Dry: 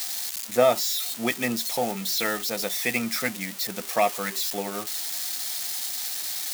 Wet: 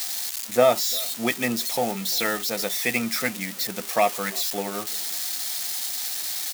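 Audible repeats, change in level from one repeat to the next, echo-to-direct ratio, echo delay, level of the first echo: 1, repeats not evenly spaced, −24.0 dB, 344 ms, −24.0 dB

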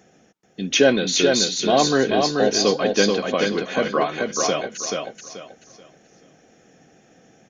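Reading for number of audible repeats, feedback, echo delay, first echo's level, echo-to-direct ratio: 3, 28%, 433 ms, −3.5 dB, −3.0 dB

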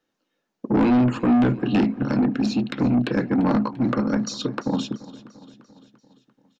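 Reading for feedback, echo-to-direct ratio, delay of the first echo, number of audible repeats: 58%, −16.5 dB, 343 ms, 4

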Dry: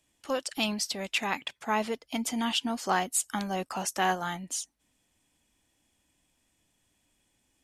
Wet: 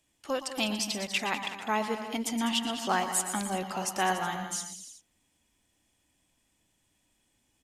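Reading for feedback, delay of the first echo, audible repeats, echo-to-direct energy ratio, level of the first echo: repeats not evenly spaced, 118 ms, 4, −6.5 dB, −10.5 dB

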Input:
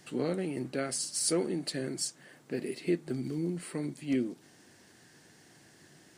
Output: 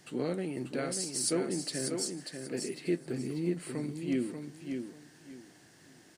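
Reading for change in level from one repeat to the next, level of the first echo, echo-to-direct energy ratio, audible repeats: −12.5 dB, −6.0 dB, −5.5 dB, 3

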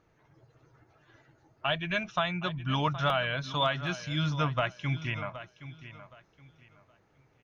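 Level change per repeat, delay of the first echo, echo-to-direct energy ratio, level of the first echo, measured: −11.5 dB, 770 ms, −13.5 dB, −14.0 dB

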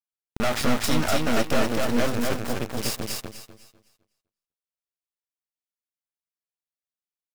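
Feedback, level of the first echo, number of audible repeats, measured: repeats not evenly spaced, −3.0 dB, 3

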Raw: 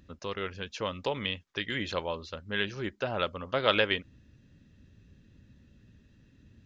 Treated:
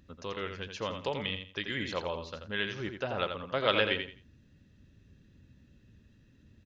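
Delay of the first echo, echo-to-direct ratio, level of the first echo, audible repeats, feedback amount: 85 ms, −6.5 dB, −7.0 dB, 3, 24%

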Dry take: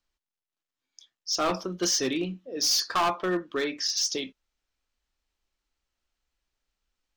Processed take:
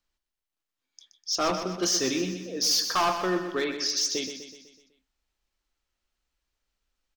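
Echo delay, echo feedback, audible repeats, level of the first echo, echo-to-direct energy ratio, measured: 125 ms, 52%, 5, −9.0 dB, −7.5 dB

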